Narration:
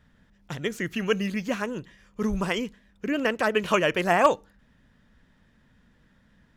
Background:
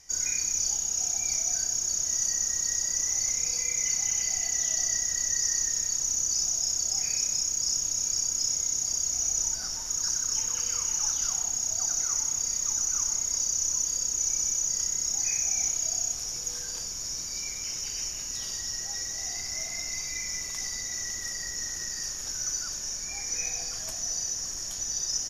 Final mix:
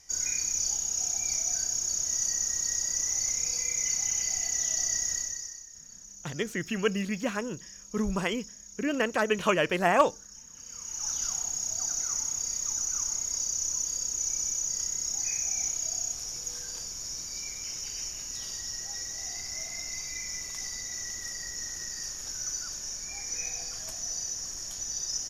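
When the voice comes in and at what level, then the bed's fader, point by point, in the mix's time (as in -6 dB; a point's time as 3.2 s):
5.75 s, -2.5 dB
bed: 5.14 s -1.5 dB
5.66 s -20 dB
10.5 s -20 dB
11.14 s -3 dB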